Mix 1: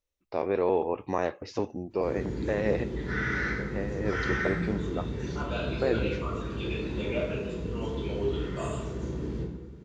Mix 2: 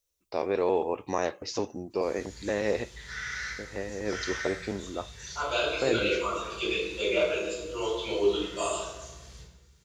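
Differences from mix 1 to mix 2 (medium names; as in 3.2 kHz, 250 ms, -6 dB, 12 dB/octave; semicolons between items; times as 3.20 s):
second voice: send +7.0 dB; background: add amplifier tone stack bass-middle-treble 10-0-10; master: add tone controls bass -4 dB, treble +14 dB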